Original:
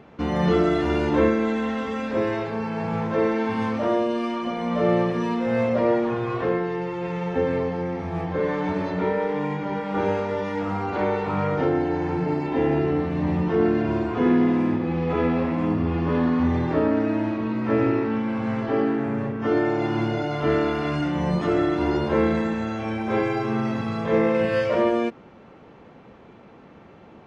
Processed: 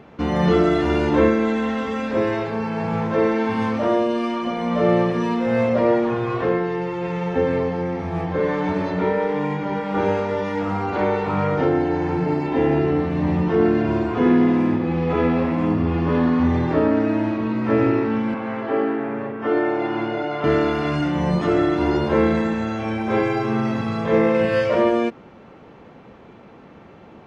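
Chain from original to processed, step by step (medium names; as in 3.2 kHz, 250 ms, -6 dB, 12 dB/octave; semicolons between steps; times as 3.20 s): 18.34–20.44 s: three-band isolator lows -13 dB, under 260 Hz, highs -13 dB, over 3.5 kHz; trim +3 dB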